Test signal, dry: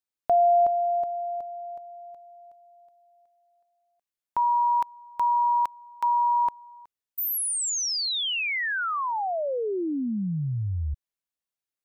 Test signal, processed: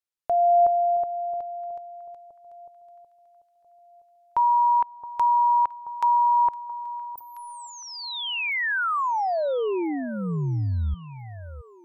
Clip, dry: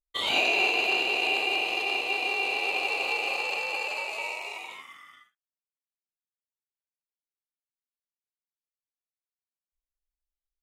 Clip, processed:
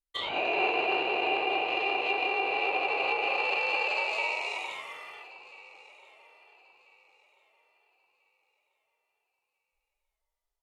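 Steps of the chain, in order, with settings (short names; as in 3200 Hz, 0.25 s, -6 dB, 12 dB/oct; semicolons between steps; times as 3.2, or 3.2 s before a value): treble ducked by the level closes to 1700 Hz, closed at -24 dBFS; AGC gain up to 6.5 dB; bell 230 Hz -7.5 dB 0.63 oct; on a send: echo with dull and thin repeats by turns 0.67 s, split 1100 Hz, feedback 53%, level -14 dB; on the sum: gain -3 dB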